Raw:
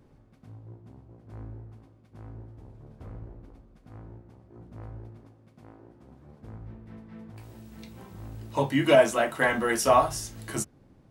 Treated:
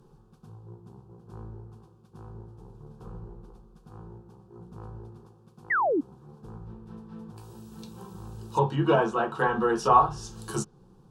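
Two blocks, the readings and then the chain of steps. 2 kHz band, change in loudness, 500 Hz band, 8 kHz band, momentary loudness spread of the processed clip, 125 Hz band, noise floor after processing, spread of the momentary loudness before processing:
−2.0 dB, −1.0 dB, −3.0 dB, can't be measured, 24 LU, +2.5 dB, −57 dBFS, 24 LU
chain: treble cut that deepens with the level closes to 2,200 Hz, closed at −21.5 dBFS
phaser with its sweep stopped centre 410 Hz, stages 8
sound drawn into the spectrogram fall, 0:05.70–0:06.01, 260–2,100 Hz −29 dBFS
level +5 dB

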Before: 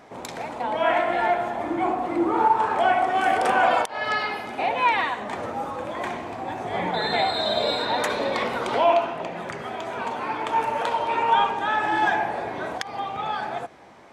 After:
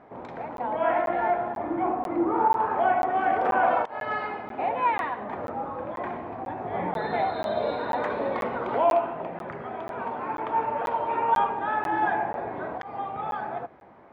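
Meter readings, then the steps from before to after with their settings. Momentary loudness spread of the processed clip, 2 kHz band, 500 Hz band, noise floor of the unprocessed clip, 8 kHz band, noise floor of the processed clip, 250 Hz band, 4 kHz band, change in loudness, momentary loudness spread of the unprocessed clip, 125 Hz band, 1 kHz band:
12 LU, −6.5 dB, −2.0 dB, −38 dBFS, below −15 dB, −40 dBFS, −2.0 dB, −17.0 dB, −3.0 dB, 11 LU, −2.0 dB, −2.5 dB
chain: low-pass filter 1,500 Hz 12 dB per octave
regular buffer underruns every 0.49 s, samples 512, zero, from 0:00.57
level −2 dB

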